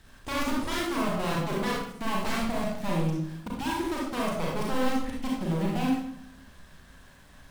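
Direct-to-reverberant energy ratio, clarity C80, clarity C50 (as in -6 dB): -4.0 dB, 4.5 dB, 0.0 dB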